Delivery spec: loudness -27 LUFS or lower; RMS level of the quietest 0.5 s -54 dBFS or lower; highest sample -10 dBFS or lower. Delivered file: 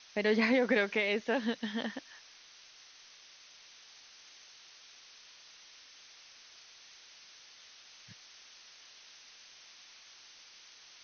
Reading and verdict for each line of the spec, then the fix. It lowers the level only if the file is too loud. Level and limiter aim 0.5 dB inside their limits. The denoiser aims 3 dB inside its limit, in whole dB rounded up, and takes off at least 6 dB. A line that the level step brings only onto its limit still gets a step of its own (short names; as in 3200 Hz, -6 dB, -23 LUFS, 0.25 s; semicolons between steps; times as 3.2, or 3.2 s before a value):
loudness -31.0 LUFS: OK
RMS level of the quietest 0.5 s -57 dBFS: OK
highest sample -17.0 dBFS: OK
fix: none